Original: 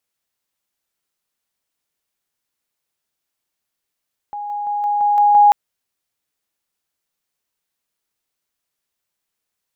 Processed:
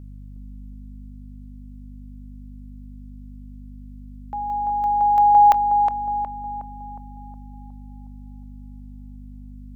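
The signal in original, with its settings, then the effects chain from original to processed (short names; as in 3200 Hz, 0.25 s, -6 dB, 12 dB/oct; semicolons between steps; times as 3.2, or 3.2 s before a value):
level ladder 825 Hz -24.5 dBFS, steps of 3 dB, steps 7, 0.17 s 0.00 s
hum 50 Hz, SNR 15 dB; on a send: darkening echo 0.364 s, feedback 53%, low-pass 1500 Hz, level -5 dB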